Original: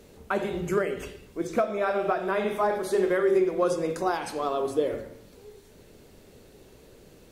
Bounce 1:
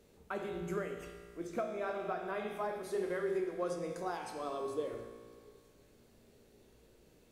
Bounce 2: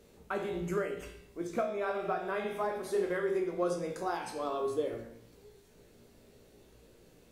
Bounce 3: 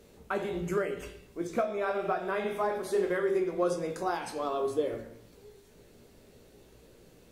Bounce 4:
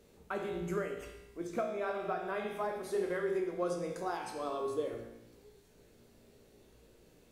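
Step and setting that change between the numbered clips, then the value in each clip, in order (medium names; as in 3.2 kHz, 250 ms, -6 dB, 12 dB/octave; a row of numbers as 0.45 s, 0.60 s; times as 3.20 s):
feedback comb, decay: 2.2 s, 0.46 s, 0.2 s, 1 s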